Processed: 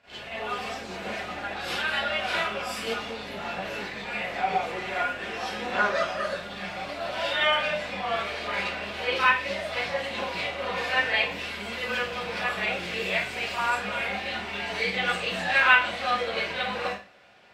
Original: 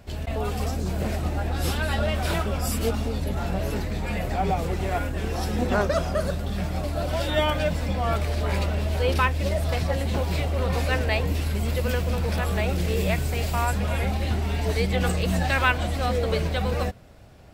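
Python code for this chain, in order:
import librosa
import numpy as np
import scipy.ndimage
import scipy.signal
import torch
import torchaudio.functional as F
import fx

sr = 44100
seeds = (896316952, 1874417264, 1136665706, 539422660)

y = fx.bandpass_q(x, sr, hz=2700.0, q=1.0)
y = fx.high_shelf(y, sr, hz=2900.0, db=-10.0)
y = fx.rev_schroeder(y, sr, rt60_s=0.35, comb_ms=31, drr_db=-10.0)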